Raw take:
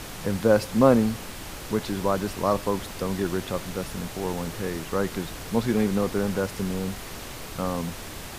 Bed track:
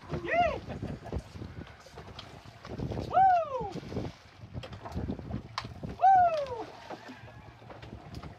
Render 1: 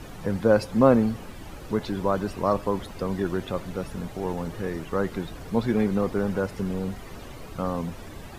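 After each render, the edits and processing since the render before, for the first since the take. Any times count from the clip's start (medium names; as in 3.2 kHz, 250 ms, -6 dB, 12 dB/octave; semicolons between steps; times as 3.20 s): noise reduction 12 dB, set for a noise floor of -39 dBFS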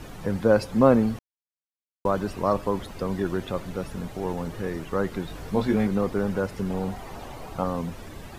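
1.19–2.05 s: mute; 5.27–5.87 s: doubling 20 ms -4 dB; 6.70–7.64 s: peaking EQ 800 Hz +9.5 dB 0.73 oct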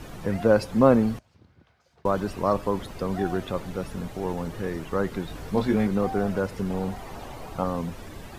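add bed track -14 dB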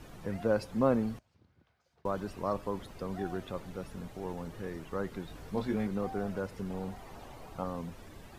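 trim -9.5 dB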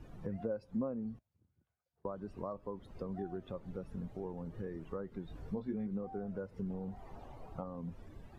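compression 6:1, threshold -39 dBFS, peak gain reduction 17 dB; spectral contrast expander 1.5:1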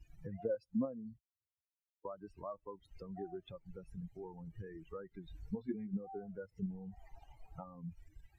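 expander on every frequency bin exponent 2; in parallel at -2.5 dB: level held to a coarse grid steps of 20 dB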